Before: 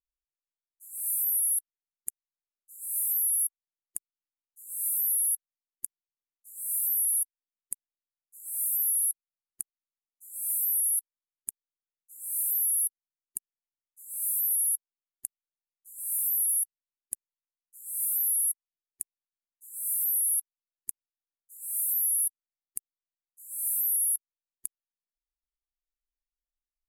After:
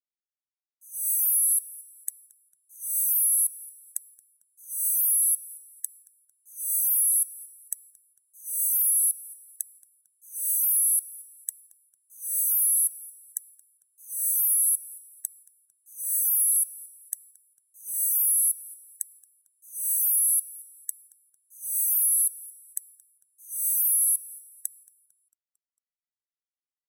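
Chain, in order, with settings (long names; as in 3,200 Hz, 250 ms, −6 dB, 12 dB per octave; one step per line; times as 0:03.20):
frequency inversion band by band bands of 2,000 Hz
noise gate with hold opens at −47 dBFS
high-shelf EQ 4,300 Hz +5.5 dB
on a send: echo with shifted repeats 225 ms, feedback 58%, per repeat −110 Hz, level −21 dB
on the sum: one half of a high-frequency compander decoder only
level −1 dB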